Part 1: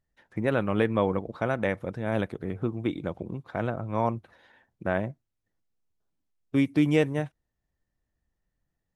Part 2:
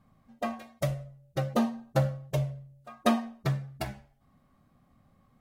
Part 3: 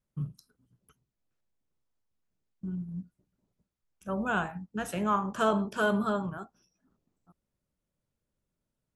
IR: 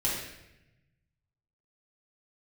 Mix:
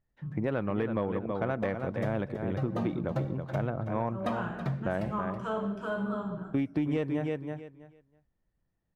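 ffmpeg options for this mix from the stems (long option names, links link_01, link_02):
-filter_complex "[0:a]volume=0.5dB,asplit=2[link_01][link_02];[link_02]volume=-9dB[link_03];[1:a]adelay=1200,volume=-4.5dB,asplit=3[link_04][link_05][link_06];[link_05]volume=-19dB[link_07];[link_06]volume=-13dB[link_08];[2:a]adelay=50,volume=-11.5dB,asplit=2[link_09][link_10];[link_10]volume=-4dB[link_11];[3:a]atrim=start_sample=2205[link_12];[link_07][link_11]amix=inputs=2:normalize=0[link_13];[link_13][link_12]afir=irnorm=-1:irlink=0[link_14];[link_03][link_08]amix=inputs=2:normalize=0,aecho=0:1:325|650|975:1|0.18|0.0324[link_15];[link_01][link_04][link_09][link_14][link_15]amix=inputs=5:normalize=0,lowpass=frequency=1800:poles=1,asoftclip=type=tanh:threshold=-12dB,acompressor=threshold=-26dB:ratio=6"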